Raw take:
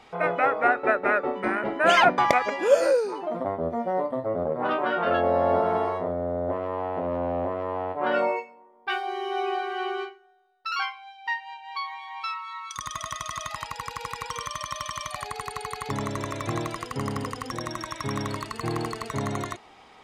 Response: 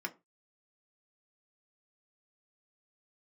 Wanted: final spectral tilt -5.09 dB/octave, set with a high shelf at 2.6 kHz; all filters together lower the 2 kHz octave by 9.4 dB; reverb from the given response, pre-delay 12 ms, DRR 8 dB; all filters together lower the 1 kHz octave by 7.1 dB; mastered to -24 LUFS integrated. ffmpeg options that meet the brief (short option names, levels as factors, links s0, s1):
-filter_complex "[0:a]equalizer=f=1000:t=o:g=-7.5,equalizer=f=2000:t=o:g=-6,highshelf=f=2600:g=-8.5,asplit=2[s0][s1];[1:a]atrim=start_sample=2205,adelay=12[s2];[s1][s2]afir=irnorm=-1:irlink=0,volume=0.316[s3];[s0][s3]amix=inputs=2:normalize=0,volume=2.11"